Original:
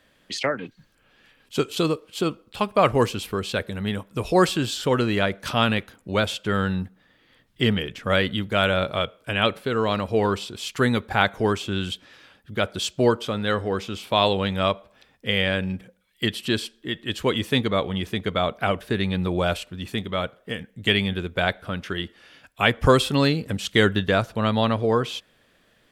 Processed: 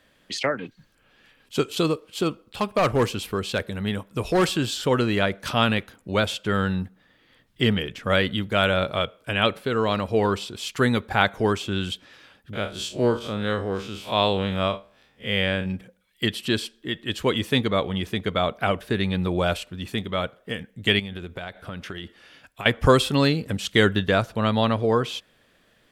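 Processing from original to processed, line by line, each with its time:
0:01.90–0:04.51: hard clipping −15 dBFS
0:12.53–0:15.66: spectrum smeared in time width 87 ms
0:20.99–0:22.66: downward compressor 16 to 1, threshold −29 dBFS

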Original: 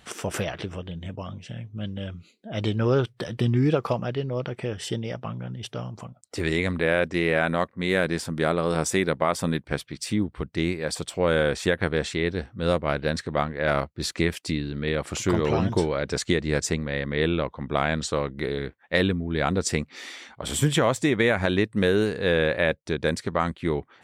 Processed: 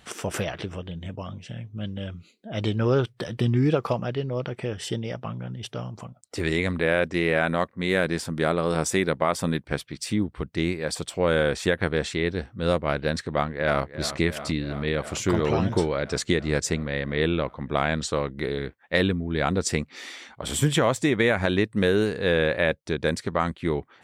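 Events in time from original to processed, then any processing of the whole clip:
0:13.25–0:13.83: delay throw 340 ms, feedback 80%, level −13 dB

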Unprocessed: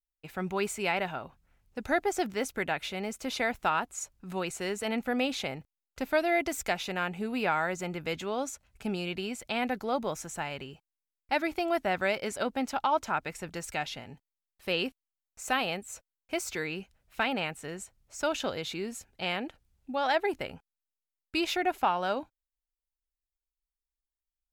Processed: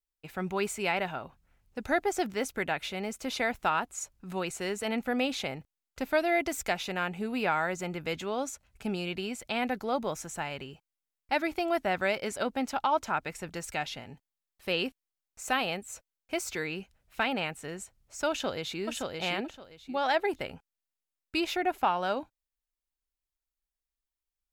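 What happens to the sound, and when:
0:18.30–0:18.83: delay throw 570 ms, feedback 20%, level −3 dB
0:21.40–0:21.83: parametric band 5,300 Hz −3 dB 2.9 octaves

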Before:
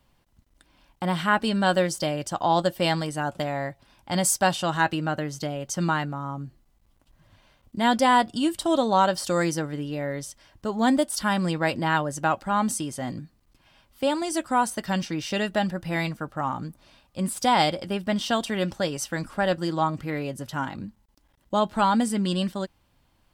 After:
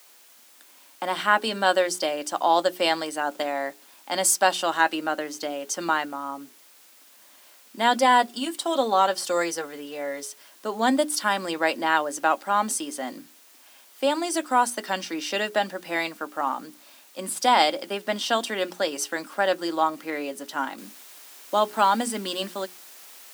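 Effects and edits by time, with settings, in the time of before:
0:07.99–0:10.23: notch comb filter 310 Hz
0:20.78: noise floor change −56 dB −49 dB
whole clip: Butterworth high-pass 250 Hz 36 dB per octave; parametric band 320 Hz −2.5 dB 1.4 octaves; mains-hum notches 60/120/180/240/300/360/420 Hz; level +2.5 dB

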